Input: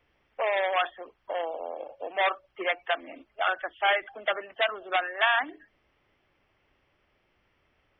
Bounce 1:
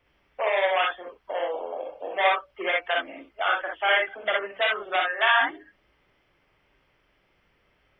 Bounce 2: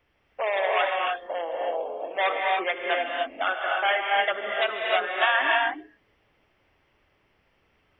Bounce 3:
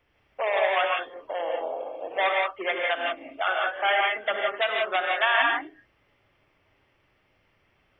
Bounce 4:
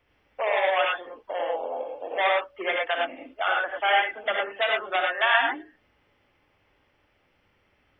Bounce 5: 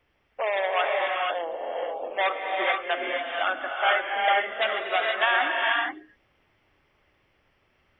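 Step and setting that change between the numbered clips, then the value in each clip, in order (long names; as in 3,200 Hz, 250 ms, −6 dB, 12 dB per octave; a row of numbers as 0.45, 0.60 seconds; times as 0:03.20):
reverb whose tail is shaped and stops, gate: 80, 330, 200, 130, 510 milliseconds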